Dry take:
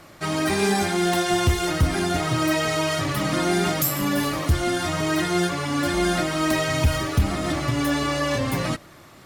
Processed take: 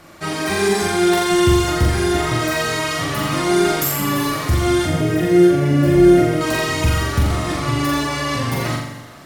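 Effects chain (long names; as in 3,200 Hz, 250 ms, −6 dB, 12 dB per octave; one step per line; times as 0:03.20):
0:04.85–0:06.41: octave-band graphic EQ 125/250/500/1,000/4,000/8,000 Hz +11/+3/+8/−11/−8/−7 dB
flutter between parallel walls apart 7.3 metres, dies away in 0.79 s
dense smooth reverb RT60 2.3 s, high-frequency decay 0.85×, DRR 11.5 dB
level +1 dB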